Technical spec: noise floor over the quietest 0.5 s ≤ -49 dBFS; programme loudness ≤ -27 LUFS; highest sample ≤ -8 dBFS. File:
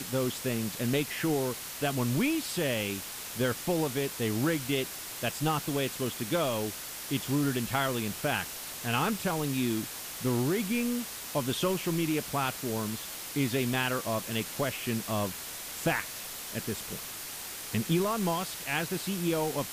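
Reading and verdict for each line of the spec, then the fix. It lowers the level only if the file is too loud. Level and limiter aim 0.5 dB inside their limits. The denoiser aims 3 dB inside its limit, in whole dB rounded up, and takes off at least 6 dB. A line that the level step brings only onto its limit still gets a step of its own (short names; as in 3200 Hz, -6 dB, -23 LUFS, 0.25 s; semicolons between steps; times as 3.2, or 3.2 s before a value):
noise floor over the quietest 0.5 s -40 dBFS: fail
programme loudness -31.0 LUFS: OK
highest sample -15.5 dBFS: OK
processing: denoiser 12 dB, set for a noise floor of -40 dBFS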